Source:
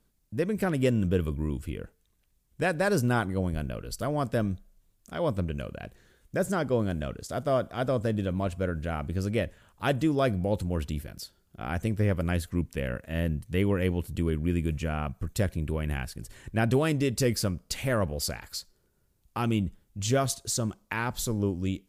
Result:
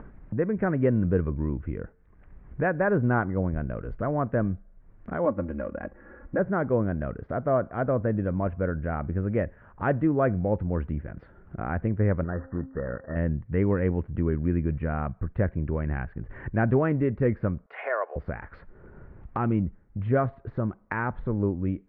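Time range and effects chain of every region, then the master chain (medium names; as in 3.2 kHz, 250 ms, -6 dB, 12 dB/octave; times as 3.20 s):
5.25–6.39 s: median filter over 15 samples + bass shelf 130 Hz -10 dB + comb 3.6 ms, depth 86%
12.24–13.16 s: CVSD coder 16 kbps + rippled Chebyshev low-pass 1.9 kHz, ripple 6 dB + de-hum 265.5 Hz, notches 4
17.66–18.16 s: steep high-pass 490 Hz + comb 2.8 ms, depth 38%
whole clip: de-esser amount 60%; steep low-pass 1.9 kHz 36 dB/octave; upward compressor, threshold -28 dBFS; trim +2 dB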